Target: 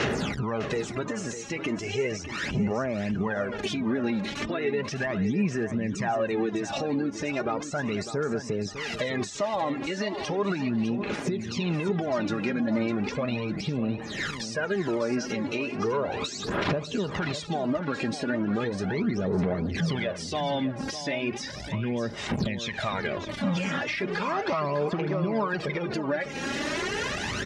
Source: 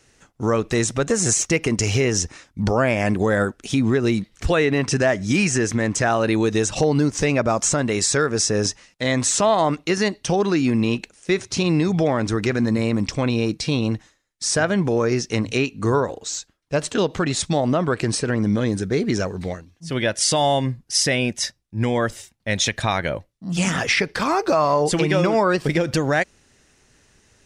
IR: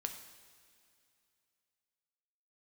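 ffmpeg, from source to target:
-af "aeval=exprs='val(0)+0.5*0.0668*sgn(val(0))':c=same,aphaser=in_gain=1:out_gain=1:delay=3.7:decay=0.65:speed=0.36:type=sinusoidal,acompressor=threshold=-21dB:ratio=6,afftdn=nr=17:nf=-38,alimiter=limit=-20.5dB:level=0:latency=1:release=397,highpass=110,lowpass=3.6k,aecho=1:1:4.9:0.3,aecho=1:1:603|1206|1809:0.282|0.0733|0.0191,volume=1dB"

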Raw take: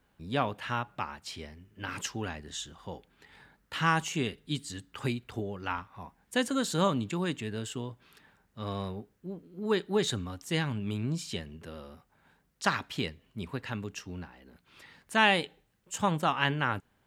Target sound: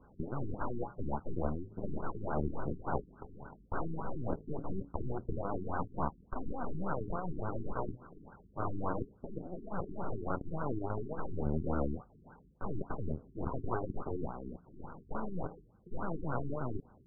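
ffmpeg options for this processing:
-af "afftfilt=real='re*lt(hypot(re,im),0.0447)':imag='im*lt(hypot(re,im),0.0447)':win_size=1024:overlap=0.75,adynamicequalizer=threshold=0.00501:dfrequency=720:dqfactor=3.7:tfrequency=720:tqfactor=3.7:attack=5:release=100:ratio=0.375:range=2:mode=cutabove:tftype=bell,areverse,acompressor=threshold=-41dB:ratio=6,areverse,aeval=exprs='0.0355*(cos(1*acos(clip(val(0)/0.0355,-1,1)))-cos(1*PI/2))+0.00251*(cos(4*acos(clip(val(0)/0.0355,-1,1)))-cos(4*PI/2))+0.00355*(cos(6*acos(clip(val(0)/0.0355,-1,1)))-cos(6*PI/2))+0.0126*(cos(8*acos(clip(val(0)/0.0355,-1,1)))-cos(8*PI/2))':c=same,afftfilt=real='re*lt(b*sr/1024,400*pow(1600/400,0.5+0.5*sin(2*PI*3.5*pts/sr)))':imag='im*lt(b*sr/1024,400*pow(1600/400,0.5+0.5*sin(2*PI*3.5*pts/sr)))':win_size=1024:overlap=0.75,volume=11dB"

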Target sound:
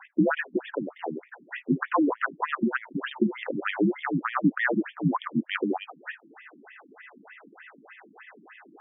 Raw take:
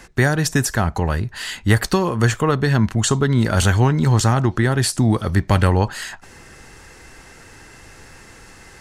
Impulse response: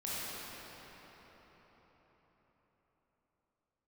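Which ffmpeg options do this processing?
-af "highpass=f=200:t=q:w=0.5412,highpass=f=200:t=q:w=1.307,lowpass=f=3.4k:t=q:w=0.5176,lowpass=f=3.4k:t=q:w=0.7071,lowpass=f=3.4k:t=q:w=1.932,afreqshift=-64,afftfilt=real='re*between(b*sr/1024,230*pow(2600/230,0.5+0.5*sin(2*PI*3.3*pts/sr))/1.41,230*pow(2600/230,0.5+0.5*sin(2*PI*3.3*pts/sr))*1.41)':imag='im*between(b*sr/1024,230*pow(2600/230,0.5+0.5*sin(2*PI*3.3*pts/sr))/1.41,230*pow(2600/230,0.5+0.5*sin(2*PI*3.3*pts/sr))*1.41)':win_size=1024:overlap=0.75,volume=2dB"

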